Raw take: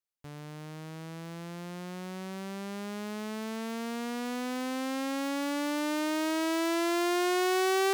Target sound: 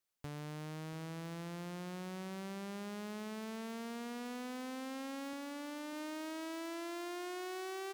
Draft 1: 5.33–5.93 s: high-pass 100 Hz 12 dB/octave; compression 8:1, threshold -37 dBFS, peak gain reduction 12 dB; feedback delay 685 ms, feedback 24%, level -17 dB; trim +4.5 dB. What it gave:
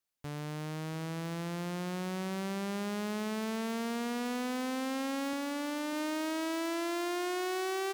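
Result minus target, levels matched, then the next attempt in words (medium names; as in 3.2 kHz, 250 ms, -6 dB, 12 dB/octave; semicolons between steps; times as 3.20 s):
compression: peak gain reduction -9 dB
5.33–5.93 s: high-pass 100 Hz 12 dB/octave; compression 8:1, threshold -47 dBFS, peak gain reduction 21 dB; feedback delay 685 ms, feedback 24%, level -17 dB; trim +4.5 dB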